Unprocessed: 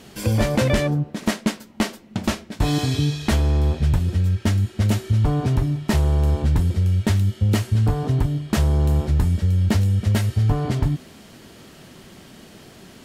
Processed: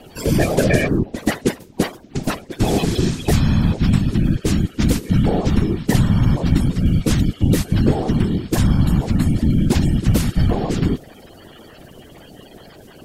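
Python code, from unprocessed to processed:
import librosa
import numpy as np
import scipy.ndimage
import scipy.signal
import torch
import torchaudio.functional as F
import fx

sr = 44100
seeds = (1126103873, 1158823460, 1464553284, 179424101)

y = fx.spec_quant(x, sr, step_db=30)
y = fx.whisperise(y, sr, seeds[0])
y = F.gain(torch.from_numpy(y), 3.5).numpy()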